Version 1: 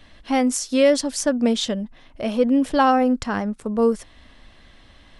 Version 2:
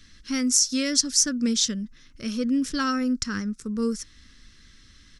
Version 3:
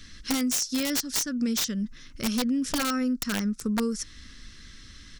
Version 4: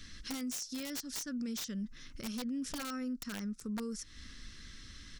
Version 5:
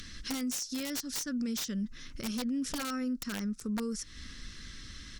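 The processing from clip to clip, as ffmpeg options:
ffmpeg -i in.wav -af "firequalizer=gain_entry='entry(210,0);entry(480,-9);entry(700,-28);entry(1300,0);entry(3000,-3);entry(5600,14);entry(8900,4)':delay=0.05:min_phase=1,volume=-3dB" out.wav
ffmpeg -i in.wav -af "acompressor=threshold=-29dB:ratio=10,aeval=exprs='(mod(16.8*val(0)+1,2)-1)/16.8':channel_layout=same,volume=5.5dB" out.wav
ffmpeg -i in.wav -af "alimiter=level_in=5dB:limit=-24dB:level=0:latency=1:release=196,volume=-5dB,volume=-3.5dB" out.wav
ffmpeg -i in.wav -af "acompressor=mode=upward:threshold=-51dB:ratio=2.5,volume=4.5dB" -ar 48000 -c:a libopus -b:a 64k out.opus

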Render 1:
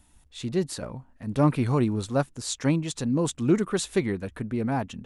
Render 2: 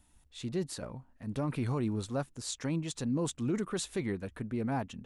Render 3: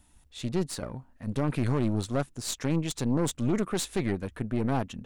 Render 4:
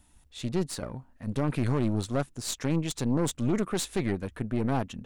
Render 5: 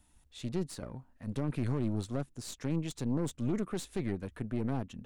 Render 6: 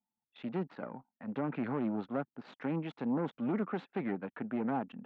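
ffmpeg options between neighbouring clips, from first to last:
ffmpeg -i in.wav -af "alimiter=limit=-17.5dB:level=0:latency=1:release=25,volume=-6dB" out.wav
ffmpeg -i in.wav -af "aeval=exprs='0.0708*(cos(1*acos(clip(val(0)/0.0708,-1,1)))-cos(1*PI/2))+0.0112*(cos(4*acos(clip(val(0)/0.0708,-1,1)))-cos(4*PI/2))':channel_layout=same,volume=4.5dB" out.wav
ffmpeg -i in.wav -af anull out.wav
ffmpeg -i in.wav -filter_complex "[0:a]acrossover=split=450[link_01][link_02];[link_02]acompressor=threshold=-41dB:ratio=2[link_03];[link_01][link_03]amix=inputs=2:normalize=0,volume=-5dB" out.wav
ffmpeg -i in.wav -af "highpass=frequency=190:width=0.5412,highpass=frequency=190:width=1.3066,equalizer=frequency=360:width_type=q:width=4:gain=-4,equalizer=frequency=820:width_type=q:width=4:gain=7,equalizer=frequency=1400:width_type=q:width=4:gain=5,lowpass=frequency=2700:width=0.5412,lowpass=frequency=2700:width=1.3066,anlmdn=0.0001,volume=2dB" out.wav

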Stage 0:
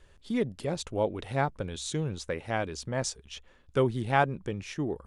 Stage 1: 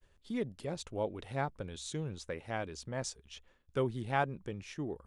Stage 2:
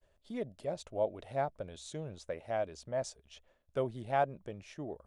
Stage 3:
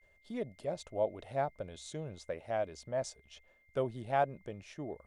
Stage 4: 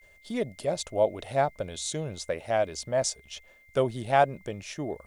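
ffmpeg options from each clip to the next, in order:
ffmpeg -i in.wav -af "agate=range=-33dB:threshold=-54dB:ratio=3:detection=peak,volume=-7dB" out.wav
ffmpeg -i in.wav -af "equalizer=frequency=630:width=3:gain=14.5,volume=-5dB" out.wav
ffmpeg -i in.wav -af "aeval=exprs='val(0)+0.000447*sin(2*PI*2100*n/s)':channel_layout=same" out.wav
ffmpeg -i in.wav -af "highshelf=frequency=3300:gain=10,volume=8dB" out.wav

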